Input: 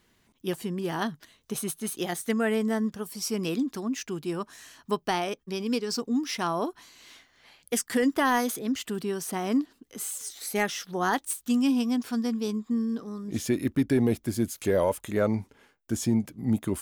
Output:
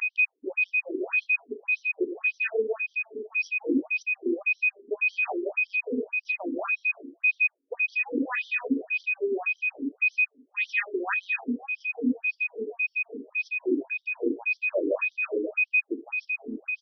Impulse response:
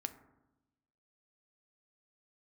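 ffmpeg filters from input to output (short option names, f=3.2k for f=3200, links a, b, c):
-filter_complex "[0:a]aphaser=in_gain=1:out_gain=1:delay=3.4:decay=0.44:speed=1.8:type=sinusoidal,afwtdn=0.0355,equalizer=f=920:t=o:w=0.62:g=-12,asoftclip=type=tanh:threshold=-14.5dB,bandreject=f=97.18:t=h:w=4,bandreject=f=194.36:t=h:w=4,bandreject=f=291.54:t=h:w=4,bandreject=f=388.72:t=h:w=4,bandreject=f=485.9:t=h:w=4,bandreject=f=583.08:t=h:w=4,bandreject=f=680.26:t=h:w=4,bandreject=f=777.44:t=h:w=4,bandreject=f=874.62:t=h:w=4,bandreject=f=971.8:t=h:w=4,bandreject=f=1.06898k:t=h:w=4,bandreject=f=1.16616k:t=h:w=4,bandreject=f=1.26334k:t=h:w=4,bandreject=f=1.36052k:t=h:w=4,bandreject=f=1.4577k:t=h:w=4,bandreject=f=1.55488k:t=h:w=4,bandreject=f=1.65206k:t=h:w=4,bandreject=f=1.74924k:t=h:w=4,aeval=exprs='val(0)+0.0355*sin(2*PI*2500*n/s)':c=same,aecho=1:1:160.3|192.4:0.631|0.708,alimiter=limit=-20.5dB:level=0:latency=1:release=174,asplit=2[a][b];[1:a]atrim=start_sample=2205,afade=t=out:st=0.36:d=0.01,atrim=end_sample=16317[c];[b][c]afir=irnorm=-1:irlink=0,volume=8.5dB[d];[a][d]amix=inputs=2:normalize=0,afftfilt=real='re*between(b*sr/1024,330*pow(4400/330,0.5+0.5*sin(2*PI*1.8*pts/sr))/1.41,330*pow(4400/330,0.5+0.5*sin(2*PI*1.8*pts/sr))*1.41)':imag='im*between(b*sr/1024,330*pow(4400/330,0.5+0.5*sin(2*PI*1.8*pts/sr))/1.41,330*pow(4400/330,0.5+0.5*sin(2*PI*1.8*pts/sr))*1.41)':win_size=1024:overlap=0.75,volume=-1.5dB"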